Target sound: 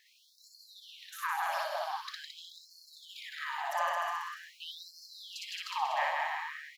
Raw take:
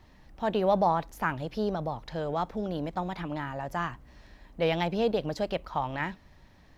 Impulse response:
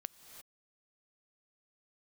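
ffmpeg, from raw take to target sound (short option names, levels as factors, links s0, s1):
-filter_complex "[0:a]highshelf=f=4300:g=6,bandreject=f=1400:w=6.6,aecho=1:1:160|304|433.6|550.2|655.2:0.631|0.398|0.251|0.158|0.1,acompressor=threshold=0.0398:ratio=6,asplit=2[s0][s1];[1:a]atrim=start_sample=2205,adelay=59[s2];[s1][s2]afir=irnorm=-1:irlink=0,volume=1.58[s3];[s0][s3]amix=inputs=2:normalize=0,afftfilt=real='re*gte(b*sr/1024,540*pow(4200/540,0.5+0.5*sin(2*PI*0.45*pts/sr)))':imag='im*gte(b*sr/1024,540*pow(4200/540,0.5+0.5*sin(2*PI*0.45*pts/sr)))':win_size=1024:overlap=0.75"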